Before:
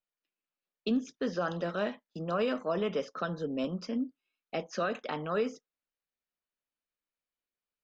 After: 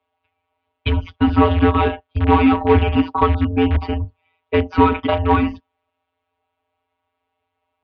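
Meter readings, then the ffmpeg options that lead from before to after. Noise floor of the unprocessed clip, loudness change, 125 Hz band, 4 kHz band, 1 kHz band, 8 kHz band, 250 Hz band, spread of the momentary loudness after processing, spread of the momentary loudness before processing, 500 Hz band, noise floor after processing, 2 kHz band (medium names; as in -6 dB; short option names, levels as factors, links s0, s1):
under -85 dBFS, +16.5 dB, +23.5 dB, +13.0 dB, +19.5 dB, no reading, +16.5 dB, 9 LU, 6 LU, +12.5 dB, -77 dBFS, +13.5 dB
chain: -filter_complex "[0:a]afftfilt=real='hypot(re,im)*cos(PI*b)':imag='0':win_size=1024:overlap=0.75,equalizer=f=250:t=o:w=1:g=-4,equalizer=f=500:t=o:w=1:g=-6,equalizer=f=1000:t=o:w=1:g=10,equalizer=f=2000:t=o:w=1:g=-11,asplit=2[s0][s1];[s1]aeval=exprs='(mod(44.7*val(0)+1,2)-1)/44.7':c=same,volume=0.282[s2];[s0][s2]amix=inputs=2:normalize=0,highpass=f=190:t=q:w=0.5412,highpass=f=190:t=q:w=1.307,lowpass=f=3200:t=q:w=0.5176,lowpass=f=3200:t=q:w=0.7071,lowpass=f=3200:t=q:w=1.932,afreqshift=-250,acrossover=split=430|1100[s3][s4][s5];[s4]acompressor=threshold=0.00282:ratio=6[s6];[s3][s6][s5]amix=inputs=3:normalize=0,alimiter=level_in=21.1:limit=0.891:release=50:level=0:latency=1,volume=0.891"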